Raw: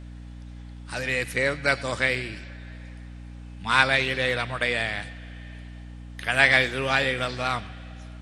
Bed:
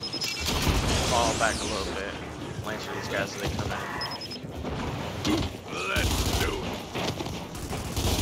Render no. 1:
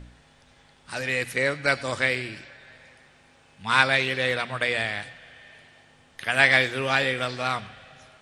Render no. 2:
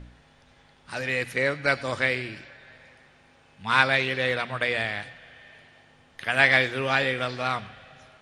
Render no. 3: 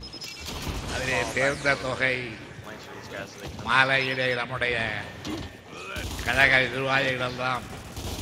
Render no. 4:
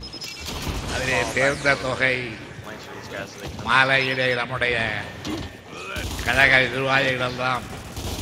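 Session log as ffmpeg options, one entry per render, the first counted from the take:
-af "bandreject=f=60:t=h:w=4,bandreject=f=120:t=h:w=4,bandreject=f=180:t=h:w=4,bandreject=f=240:t=h:w=4,bandreject=f=300:t=h:w=4"
-af "highshelf=f=5.3k:g=-7,bandreject=f=7.9k:w=15"
-filter_complex "[1:a]volume=-7.5dB[a];[0:a][a]amix=inputs=2:normalize=0"
-af "volume=4dB,alimiter=limit=-1dB:level=0:latency=1"

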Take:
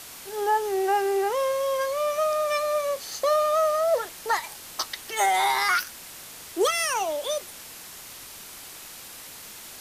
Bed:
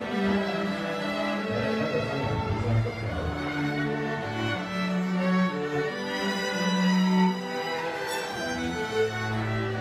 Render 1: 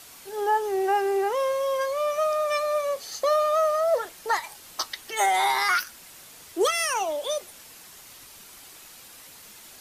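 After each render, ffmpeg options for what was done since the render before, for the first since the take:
-af "afftdn=nr=6:nf=-43"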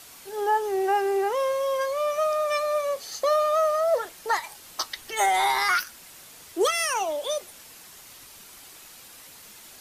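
-filter_complex "[0:a]asettb=1/sr,asplit=3[a][b][c];[a]atrim=end=4.964[d];[b]atrim=start=4.96:end=5.81,asetpts=PTS-STARTPTS,afade=t=in:d=0.004:c=qsin,afade=t=out:st=0.846:d=0.004:c=qsin,lowshelf=f=89:g=9.5[e];[c]atrim=start=5.806[f];[d][e]acrossfade=d=0.004:c1=hsin:c2=qsin[g];[g][f]acrossfade=d=0.004:c1=qsin:c2=hsin"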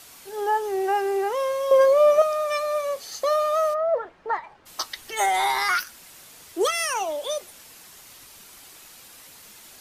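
-filter_complex "[0:a]asettb=1/sr,asplit=3[a][b][c];[a]atrim=end=1.714[d];[b]atrim=start=1.71:end=2.22,asetpts=PTS-STARTPTS,afade=t=in:d=0.004:c=qsin,afade=t=out:st=0.506:d=0.004:c=qsin,equalizer=f=400:w=0.6:g=14[e];[c]atrim=start=2.216[f];[d][e]acrossfade=d=0.004:c1=hsin:c2=qsin[g];[g][f]acrossfade=d=0.004:c1=qsin:c2=hsin,asplit=3[h][i][j];[h]afade=t=out:st=3.73:d=0.02[k];[i]lowpass=1.5k,afade=t=in:st=3.73:d=0.02,afade=t=out:st=4.65:d=0.02[l];[j]afade=t=in:st=4.65:d=0.02[m];[k][l][m]amix=inputs=3:normalize=0"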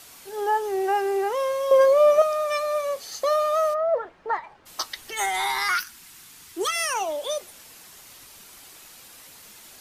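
-filter_complex "[0:a]asettb=1/sr,asplit=3[a][b][c];[a]atrim=end=5.134[d];[b]atrim=start=5.13:end=6.76,asetpts=PTS-STARTPTS,afade=t=in:d=0.004:c=qsin,afade=t=out:st=1.626:d=0.004:c=qsin,equalizer=f=570:w=2.2:g=-14.5[e];[c]atrim=start=6.756[f];[d][e]acrossfade=d=0.004:c1=hsin:c2=qsin[g];[g][f]acrossfade=d=0.004:c1=qsin:c2=hsin"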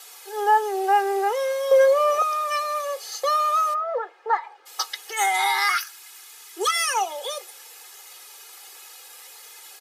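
-af "highpass=f=460:w=0.5412,highpass=f=460:w=1.3066,aecho=1:1:2.4:0.94"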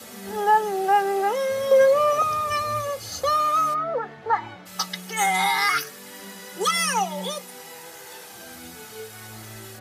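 -filter_complex "[1:a]volume=-13.5dB[a];[0:a][a]amix=inputs=2:normalize=0"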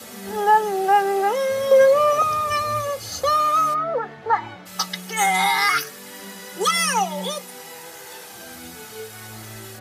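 -af "volume=2.5dB"

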